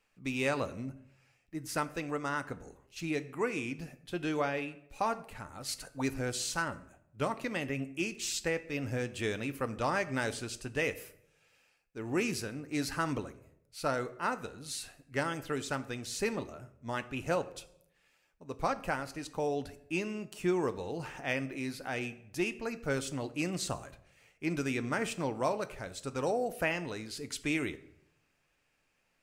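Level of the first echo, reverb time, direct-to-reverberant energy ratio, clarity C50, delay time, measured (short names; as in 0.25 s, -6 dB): none, 0.75 s, 10.5 dB, 16.0 dB, none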